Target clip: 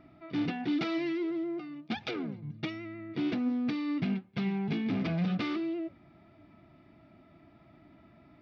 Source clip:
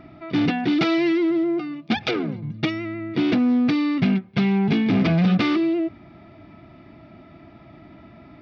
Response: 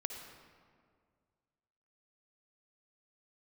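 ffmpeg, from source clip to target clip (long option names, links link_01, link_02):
-af "flanger=delay=3.3:depth=3.6:regen=87:speed=1.4:shape=sinusoidal,volume=-7.5dB"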